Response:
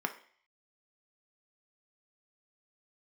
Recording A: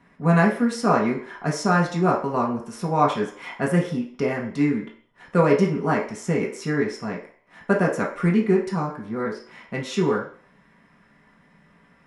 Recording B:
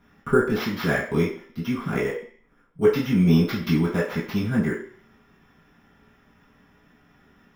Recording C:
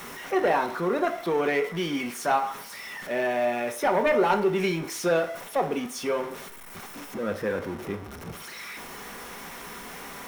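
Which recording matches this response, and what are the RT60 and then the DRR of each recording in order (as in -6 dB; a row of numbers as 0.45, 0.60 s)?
C; 0.50, 0.50, 0.50 s; -3.5, -10.5, 5.5 dB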